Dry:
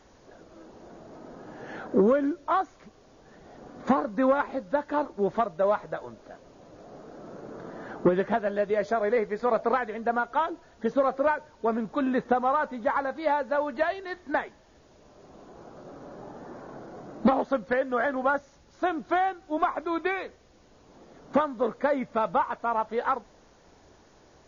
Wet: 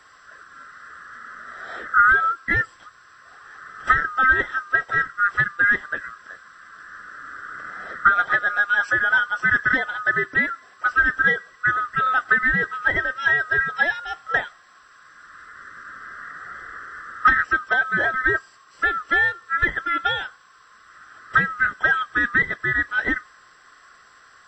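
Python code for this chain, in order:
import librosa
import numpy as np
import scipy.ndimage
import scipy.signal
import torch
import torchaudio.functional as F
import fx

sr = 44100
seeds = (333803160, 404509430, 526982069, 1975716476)

y = fx.band_swap(x, sr, width_hz=1000)
y = fx.low_shelf(y, sr, hz=480.0, db=-8.0)
y = y * librosa.db_to_amplitude(6.5)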